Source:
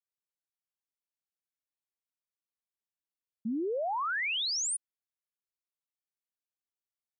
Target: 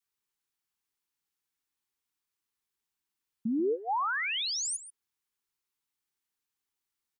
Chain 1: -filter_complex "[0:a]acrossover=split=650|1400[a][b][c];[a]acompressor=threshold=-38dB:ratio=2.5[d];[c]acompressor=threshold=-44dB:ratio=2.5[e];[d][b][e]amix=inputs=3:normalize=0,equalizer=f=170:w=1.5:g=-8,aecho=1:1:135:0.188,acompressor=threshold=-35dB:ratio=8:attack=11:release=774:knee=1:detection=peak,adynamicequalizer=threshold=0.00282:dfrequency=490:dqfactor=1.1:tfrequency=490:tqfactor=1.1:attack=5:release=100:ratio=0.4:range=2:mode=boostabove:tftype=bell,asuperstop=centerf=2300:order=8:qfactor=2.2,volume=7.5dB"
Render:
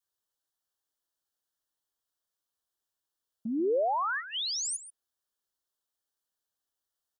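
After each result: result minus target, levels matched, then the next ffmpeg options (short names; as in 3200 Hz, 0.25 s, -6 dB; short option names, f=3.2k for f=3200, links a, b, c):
125 Hz band -4.5 dB; 500 Hz band +3.5 dB
-filter_complex "[0:a]acrossover=split=650|1400[a][b][c];[a]acompressor=threshold=-38dB:ratio=2.5[d];[c]acompressor=threshold=-44dB:ratio=2.5[e];[d][b][e]amix=inputs=3:normalize=0,equalizer=f=170:w=1.5:g=-2,aecho=1:1:135:0.188,acompressor=threshold=-35dB:ratio=8:attack=11:release=774:knee=1:detection=peak,adynamicequalizer=threshold=0.00282:dfrequency=490:dqfactor=1.1:tfrequency=490:tqfactor=1.1:attack=5:release=100:ratio=0.4:range=2:mode=boostabove:tftype=bell,asuperstop=centerf=2300:order=8:qfactor=2.2,volume=7.5dB"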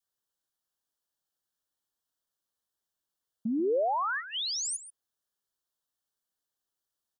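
500 Hz band +3.5 dB
-filter_complex "[0:a]acrossover=split=650|1400[a][b][c];[a]acompressor=threshold=-38dB:ratio=2.5[d];[c]acompressor=threshold=-44dB:ratio=2.5[e];[d][b][e]amix=inputs=3:normalize=0,equalizer=f=170:w=1.5:g=-2,aecho=1:1:135:0.188,acompressor=threshold=-35dB:ratio=8:attack=11:release=774:knee=1:detection=peak,adynamicequalizer=threshold=0.00282:dfrequency=490:dqfactor=1.1:tfrequency=490:tqfactor=1.1:attack=5:release=100:ratio=0.4:range=2:mode=boostabove:tftype=bell,asuperstop=centerf=600:order=8:qfactor=2.2,volume=7.5dB"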